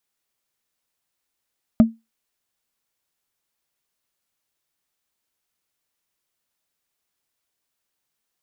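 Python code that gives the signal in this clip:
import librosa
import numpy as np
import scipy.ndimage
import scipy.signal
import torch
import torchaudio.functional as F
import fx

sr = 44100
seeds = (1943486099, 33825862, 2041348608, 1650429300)

y = fx.strike_wood(sr, length_s=0.45, level_db=-4.5, body='bar', hz=226.0, decay_s=0.21, tilt_db=10.5, modes=5)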